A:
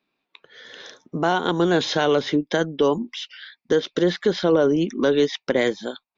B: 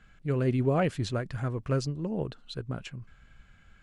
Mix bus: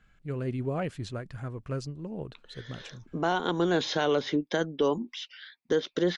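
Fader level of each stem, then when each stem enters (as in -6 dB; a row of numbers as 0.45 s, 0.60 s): -6.5 dB, -5.5 dB; 2.00 s, 0.00 s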